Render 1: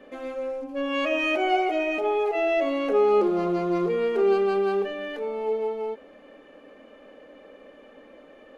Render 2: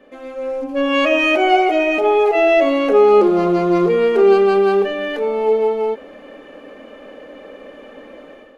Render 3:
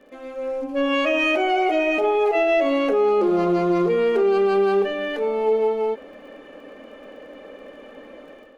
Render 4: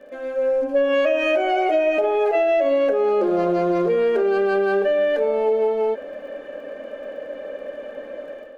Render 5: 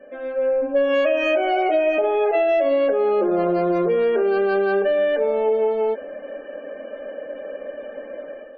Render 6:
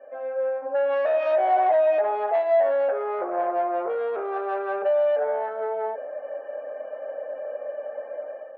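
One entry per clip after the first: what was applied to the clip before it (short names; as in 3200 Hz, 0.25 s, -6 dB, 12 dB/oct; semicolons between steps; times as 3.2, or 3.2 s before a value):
AGC gain up to 11 dB
limiter -8.5 dBFS, peak gain reduction 6 dB; crackle 32/s -45 dBFS; gain -3.5 dB
small resonant body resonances 580/1600 Hz, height 13 dB, ringing for 30 ms; compressor, threshold -16 dBFS, peak gain reduction 7.5 dB
loudest bins only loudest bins 64
sine folder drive 6 dB, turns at -9.5 dBFS; flange 0.7 Hz, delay 7.6 ms, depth 1.1 ms, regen -64%; ladder band-pass 840 Hz, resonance 45%; gain +4.5 dB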